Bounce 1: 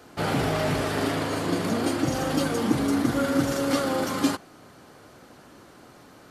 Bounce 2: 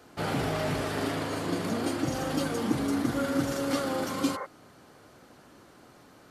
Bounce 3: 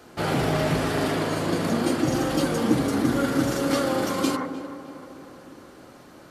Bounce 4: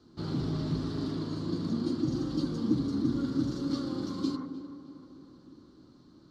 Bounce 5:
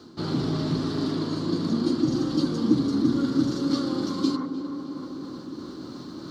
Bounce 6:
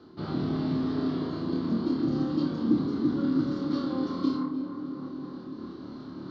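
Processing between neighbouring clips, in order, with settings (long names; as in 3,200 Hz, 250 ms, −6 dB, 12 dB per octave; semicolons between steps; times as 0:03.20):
healed spectral selection 0:04.18–0:04.43, 400–2,200 Hz before; level −4.5 dB
tape delay 308 ms, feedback 68%, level −12.5 dB, low-pass 2,200 Hz; on a send at −10.5 dB: convolution reverb RT60 1.2 s, pre-delay 3 ms; on the sum: level +5 dB
drawn EQ curve 320 Hz 0 dB, 520 Hz −15 dB, 750 Hz −18 dB, 1,100 Hz −9 dB, 1,800 Hz −19 dB, 2,500 Hz −21 dB, 4,200 Hz −1 dB, 11,000 Hz −27 dB; level −5.5 dB
high-pass filter 220 Hz 6 dB per octave; reversed playback; upward compression, threshold −35 dBFS; reversed playback; level +9 dB
high-frequency loss of the air 250 metres; on a send: flutter between parallel walls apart 4.6 metres, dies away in 0.41 s; on the sum: level −4 dB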